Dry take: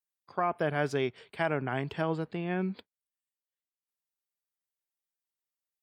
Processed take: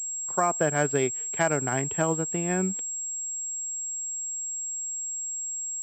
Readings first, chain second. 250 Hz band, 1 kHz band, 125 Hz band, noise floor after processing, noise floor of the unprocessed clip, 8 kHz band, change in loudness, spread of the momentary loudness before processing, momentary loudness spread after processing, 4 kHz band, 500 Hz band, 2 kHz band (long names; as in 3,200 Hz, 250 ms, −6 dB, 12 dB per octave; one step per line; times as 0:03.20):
+4.0 dB, +4.5 dB, +4.0 dB, −33 dBFS, below −85 dBFS, can't be measured, +5.0 dB, 6 LU, 5 LU, +1.0 dB, +4.5 dB, +4.5 dB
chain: transient designer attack +2 dB, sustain −5 dB
switching amplifier with a slow clock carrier 7,600 Hz
level +4 dB